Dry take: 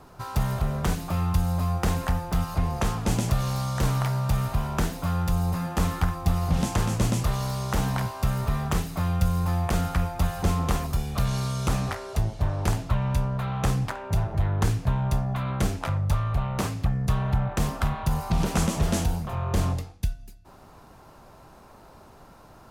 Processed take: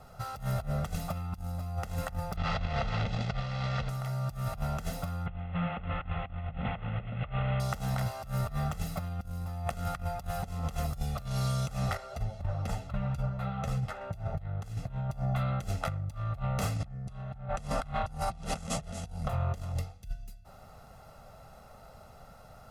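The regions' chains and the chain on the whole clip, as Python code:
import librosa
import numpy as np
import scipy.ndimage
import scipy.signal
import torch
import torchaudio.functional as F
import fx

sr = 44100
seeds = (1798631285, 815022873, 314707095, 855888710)

y = fx.chain(x, sr, fx.delta_mod(bps=64000, step_db=-23.5),
    fx.lowpass(hz=4300.0, slope=24),
    fx.over_compress(threshold_db=-26.0, ratio=-0.5), at=(2.36, 3.89))
y = fx.chain(y, sr, fx.delta_mod(bps=16000, step_db=-29.5),
    fx.echo_single(ms=138, db=-15.5), at=(5.26, 7.6))
y = fx.chain(y, sr, fx.high_shelf(hz=4900.0, db=-6.5),
    fx.ensemble(), at=(11.97, 14.01))
y = fx.chain(y, sr, fx.steep_lowpass(hz=11000.0, slope=36),
    fx.env_flatten(amount_pct=50), at=(16.76, 19.28))
y = y + 0.82 * np.pad(y, (int(1.5 * sr / 1000.0), 0))[:len(y)]
y = fx.over_compress(y, sr, threshold_db=-24.0, ratio=-0.5)
y = y * librosa.db_to_amplitude(-8.5)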